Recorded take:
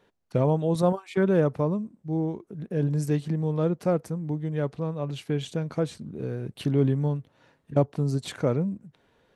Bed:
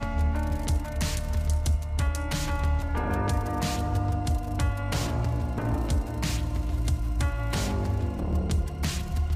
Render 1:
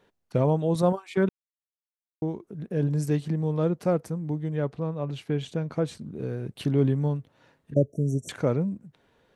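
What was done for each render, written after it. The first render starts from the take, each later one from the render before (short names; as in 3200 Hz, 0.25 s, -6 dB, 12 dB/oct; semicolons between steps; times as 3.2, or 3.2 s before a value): 1.29–2.22 mute; 4.56–5.88 high shelf 4700 Hz -7.5 dB; 7.74–8.29 brick-wall FIR band-stop 680–5500 Hz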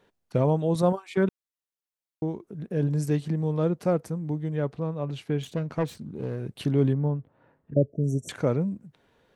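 5.42–6.39 self-modulated delay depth 0.34 ms; 6.93–8.04 LPF 1400 Hz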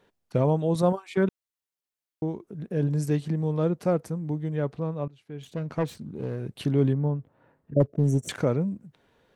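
5.08–5.68 fade in quadratic, from -20.5 dB; 7.8–8.44 sample leveller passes 1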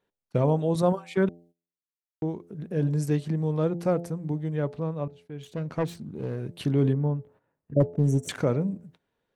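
de-hum 85.65 Hz, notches 10; gate -52 dBFS, range -14 dB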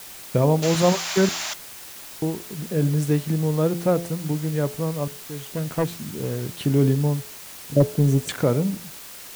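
0.62–1.54 painted sound noise 580–7600 Hz -34 dBFS; in parallel at -4 dB: requantised 6-bit, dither triangular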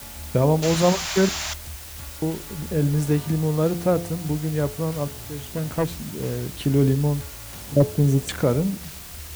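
add bed -14 dB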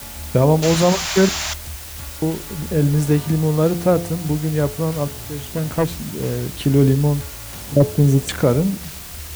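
gain +4.5 dB; limiter -3 dBFS, peak gain reduction 2.5 dB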